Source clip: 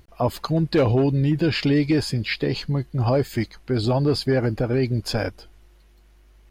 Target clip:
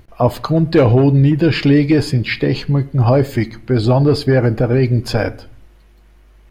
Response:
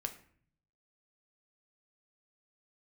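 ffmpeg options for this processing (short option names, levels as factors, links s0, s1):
-filter_complex "[0:a]asplit=2[s0][s1];[1:a]atrim=start_sample=2205,lowpass=3400[s2];[s1][s2]afir=irnorm=-1:irlink=0,volume=0.75[s3];[s0][s3]amix=inputs=2:normalize=0,volume=1.41"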